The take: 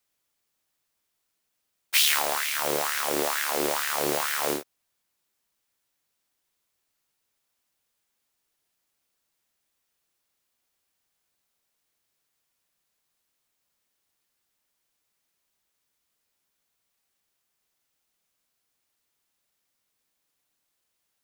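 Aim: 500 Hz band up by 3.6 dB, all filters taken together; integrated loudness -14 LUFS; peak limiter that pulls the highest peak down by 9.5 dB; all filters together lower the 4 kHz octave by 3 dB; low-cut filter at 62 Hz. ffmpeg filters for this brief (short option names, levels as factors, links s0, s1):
-af "highpass=62,equalizer=f=500:t=o:g=4.5,equalizer=f=4000:t=o:g=-4,volume=4.47,alimiter=limit=0.794:level=0:latency=1"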